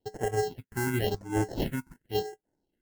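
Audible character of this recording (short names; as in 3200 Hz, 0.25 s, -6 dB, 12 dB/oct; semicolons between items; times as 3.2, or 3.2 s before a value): aliases and images of a low sample rate 1200 Hz, jitter 0%; phasing stages 4, 0.93 Hz, lowest notch 560–4100 Hz; Vorbis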